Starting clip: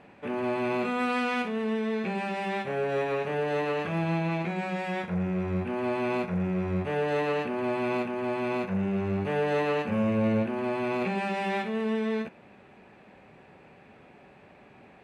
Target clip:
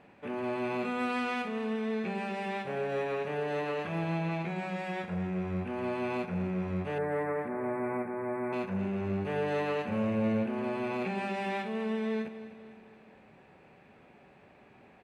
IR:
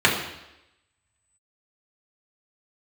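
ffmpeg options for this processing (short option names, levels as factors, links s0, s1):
-filter_complex "[0:a]asettb=1/sr,asplit=3[s0][s1][s2];[s0]atrim=end=6.984[s3];[s1]atrim=start=6.98:end=8.53,asetpts=PTS-STARTPTS,afade=t=in:d=0.004:c=qsin,afade=t=out:st=1.546:d=0.004:c=qsin,asuperstop=centerf=4400:order=20:qfactor=0.77[s4];[s2]atrim=start=8.526[s5];[s3][s4]acrossfade=d=0.004:c1=hsin:c2=qsin[s6];[s6][s5]acrossfade=d=0.004:c1=qsin:c2=hsin,asplit=2[s7][s8];[s8]aecho=0:1:250|500|750|1000|1250:0.2|0.0958|0.046|0.0221|0.0106[s9];[s7][s9]amix=inputs=2:normalize=0,volume=0.596"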